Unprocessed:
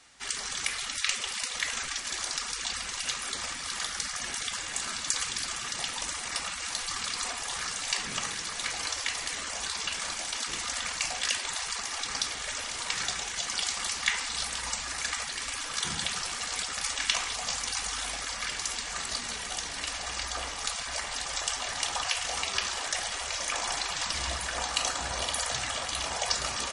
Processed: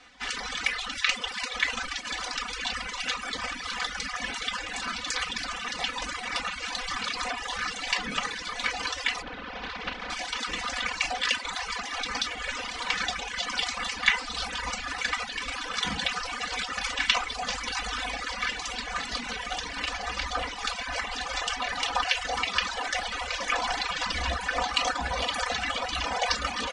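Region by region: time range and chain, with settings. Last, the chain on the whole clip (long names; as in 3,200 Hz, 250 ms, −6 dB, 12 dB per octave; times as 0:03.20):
0:09.21–0:10.09: compressing power law on the bin magnitudes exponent 0.35 + high-frequency loss of the air 230 metres
whole clip: low-pass filter 3,600 Hz 12 dB per octave; comb filter 4 ms, depth 80%; reverb reduction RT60 1.1 s; level +5 dB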